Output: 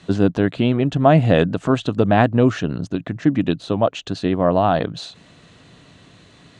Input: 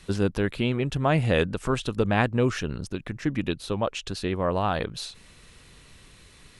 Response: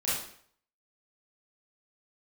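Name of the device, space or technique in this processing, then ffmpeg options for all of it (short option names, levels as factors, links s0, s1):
car door speaker: -af "highpass=99,equalizer=f=110:t=q:w=4:g=5,equalizer=f=170:t=q:w=4:g=6,equalizer=f=280:t=q:w=4:g=8,equalizer=f=670:t=q:w=4:g=9,equalizer=f=2300:t=q:w=4:g=-5,equalizer=f=5300:t=q:w=4:g=-8,lowpass=f=6800:w=0.5412,lowpass=f=6800:w=1.3066,volume=1.68"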